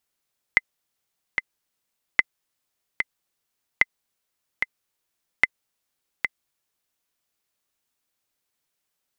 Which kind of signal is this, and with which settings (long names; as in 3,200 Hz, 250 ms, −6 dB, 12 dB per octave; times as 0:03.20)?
click track 74 BPM, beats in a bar 2, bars 4, 2,050 Hz, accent 7 dB −2 dBFS